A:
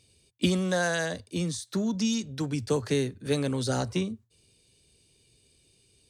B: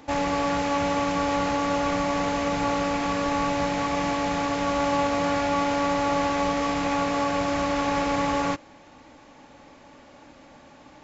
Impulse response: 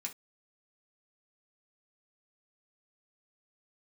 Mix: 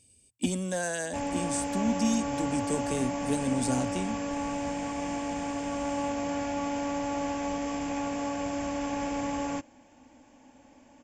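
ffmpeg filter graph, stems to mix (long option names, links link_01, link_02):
-filter_complex "[0:a]asoftclip=type=tanh:threshold=-18dB,volume=-2dB[link_01];[1:a]adelay=1050,volume=-7dB[link_02];[link_01][link_02]amix=inputs=2:normalize=0,equalizer=frequency=160:width_type=o:width=0.33:gain=-8,equalizer=frequency=250:width_type=o:width=0.33:gain=8,equalizer=frequency=400:width_type=o:width=0.33:gain=-6,equalizer=frequency=1250:width_type=o:width=0.33:gain=-11,equalizer=frequency=2000:width_type=o:width=0.33:gain=-4,equalizer=frequency=4000:width_type=o:width=0.33:gain=-11,equalizer=frequency=8000:width_type=o:width=0.33:gain=12"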